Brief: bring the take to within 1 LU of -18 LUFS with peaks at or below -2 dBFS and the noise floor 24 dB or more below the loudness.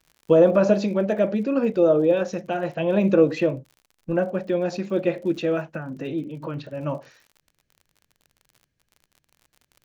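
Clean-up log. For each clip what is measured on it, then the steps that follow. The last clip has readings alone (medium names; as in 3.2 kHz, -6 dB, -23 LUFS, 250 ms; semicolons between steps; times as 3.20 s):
tick rate 49 per s; loudness -22.5 LUFS; peak level -5.5 dBFS; loudness target -18.0 LUFS
-> de-click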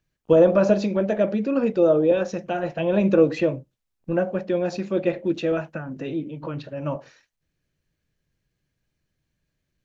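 tick rate 0.10 per s; loudness -22.5 LUFS; peak level -5.5 dBFS; loudness target -18.0 LUFS
-> trim +4.5 dB; peak limiter -2 dBFS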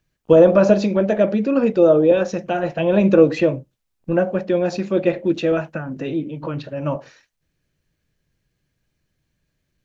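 loudness -18.0 LUFS; peak level -2.0 dBFS; noise floor -75 dBFS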